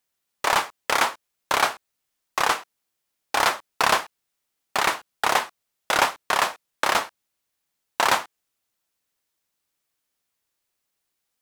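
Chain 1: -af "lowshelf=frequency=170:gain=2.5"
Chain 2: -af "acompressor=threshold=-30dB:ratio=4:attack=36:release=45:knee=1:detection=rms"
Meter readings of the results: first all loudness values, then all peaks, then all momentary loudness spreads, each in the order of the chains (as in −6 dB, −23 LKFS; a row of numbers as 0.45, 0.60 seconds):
−23.5, −31.0 LKFS; −5.0, −8.0 dBFS; 8, 8 LU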